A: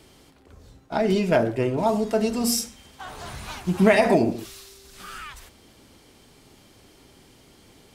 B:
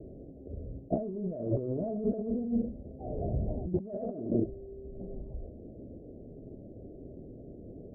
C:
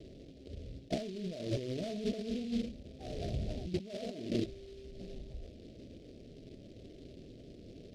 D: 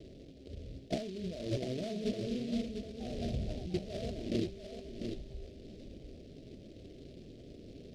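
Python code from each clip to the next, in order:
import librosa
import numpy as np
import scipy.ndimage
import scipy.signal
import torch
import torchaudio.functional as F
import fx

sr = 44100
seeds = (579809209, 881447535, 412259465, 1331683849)

y1 = scipy.signal.sosfilt(scipy.signal.butter(12, 650.0, 'lowpass', fs=sr, output='sos'), x)
y1 = fx.over_compress(y1, sr, threshold_db=-33.0, ratio=-1.0)
y2 = fx.noise_mod_delay(y1, sr, seeds[0], noise_hz=3400.0, depth_ms=0.075)
y2 = y2 * 10.0 ** (-5.0 / 20.0)
y3 = y2 + 10.0 ** (-7.0 / 20.0) * np.pad(y2, (int(698 * sr / 1000.0), 0))[:len(y2)]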